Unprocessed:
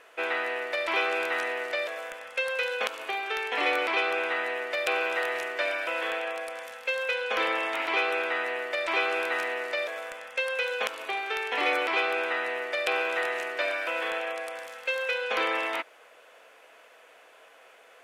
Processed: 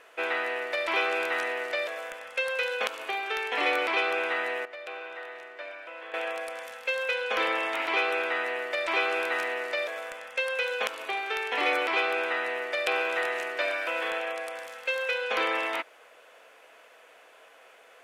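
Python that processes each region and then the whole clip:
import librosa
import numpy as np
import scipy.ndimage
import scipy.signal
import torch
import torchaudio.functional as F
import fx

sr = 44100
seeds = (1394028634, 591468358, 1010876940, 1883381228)

y = fx.chain(x, sr, fx.lowpass(hz=2400.0, slope=6),
    fx.low_shelf(hz=170.0, db=-10.0),
    fx.comb_fb(f0_hz=150.0, decay_s=1.6, harmonics='all', damping=0.0, mix_pct=70), at=(4.65, 6.14))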